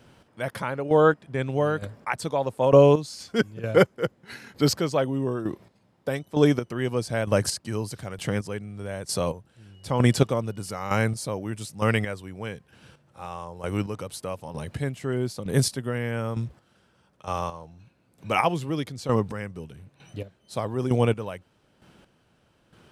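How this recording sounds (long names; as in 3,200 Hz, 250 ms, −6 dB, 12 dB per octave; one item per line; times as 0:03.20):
chopped level 1.1 Hz, depth 65%, duty 25%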